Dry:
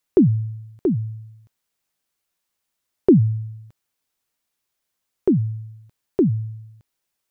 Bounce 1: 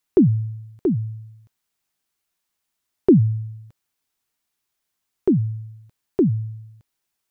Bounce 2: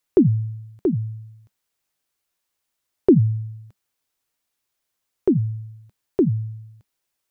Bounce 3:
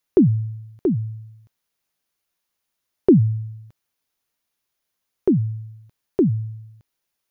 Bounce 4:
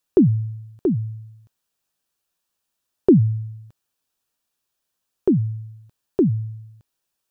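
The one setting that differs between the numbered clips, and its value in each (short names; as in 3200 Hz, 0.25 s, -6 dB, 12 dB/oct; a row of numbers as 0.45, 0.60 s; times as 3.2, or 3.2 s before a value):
notch, frequency: 530, 200, 7900, 2100 Hz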